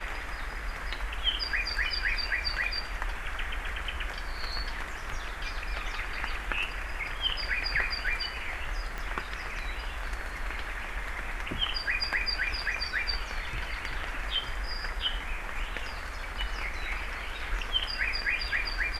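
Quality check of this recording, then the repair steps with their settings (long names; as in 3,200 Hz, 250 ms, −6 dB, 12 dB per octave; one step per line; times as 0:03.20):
0:08.98: click −22 dBFS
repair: click removal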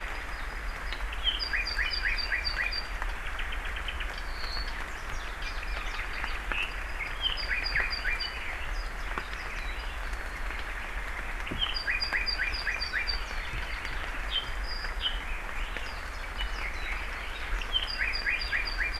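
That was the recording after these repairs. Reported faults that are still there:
0:08.98: click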